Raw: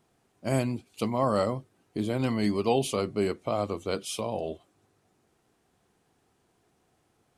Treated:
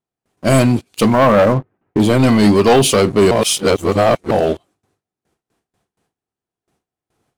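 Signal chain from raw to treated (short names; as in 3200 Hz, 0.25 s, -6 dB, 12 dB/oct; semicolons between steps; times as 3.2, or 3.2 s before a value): 1.13–2 LPF 2100 Hz 24 dB/oct; gate with hold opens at -58 dBFS; sample leveller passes 3; 3.31–4.31 reverse; gain +8 dB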